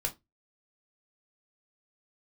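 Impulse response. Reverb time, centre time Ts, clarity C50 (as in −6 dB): 0.20 s, 9 ms, 18.0 dB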